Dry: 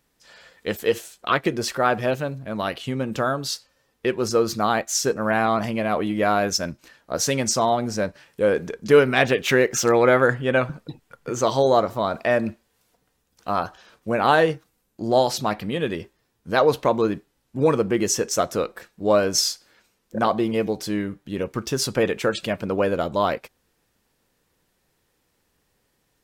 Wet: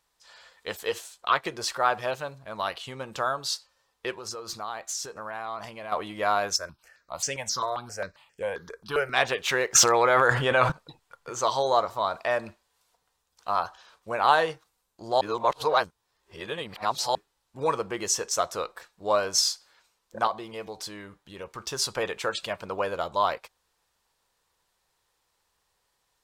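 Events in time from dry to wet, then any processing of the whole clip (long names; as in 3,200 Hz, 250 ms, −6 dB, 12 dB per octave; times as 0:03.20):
0:04.14–0:05.92: downward compressor 10 to 1, threshold −26 dBFS
0:06.56–0:09.14: step-sequenced phaser 7.5 Hz 820–3,900 Hz
0:09.75–0:10.72: envelope flattener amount 100%
0:15.21–0:17.15: reverse
0:20.27–0:21.60: downward compressor 1.5 to 1, threshold −31 dBFS
whole clip: graphic EQ with 10 bands 125 Hz −4 dB, 250 Hz −10 dB, 1,000 Hz +9 dB, 4,000 Hz +6 dB, 8,000 Hz +5 dB; level −8 dB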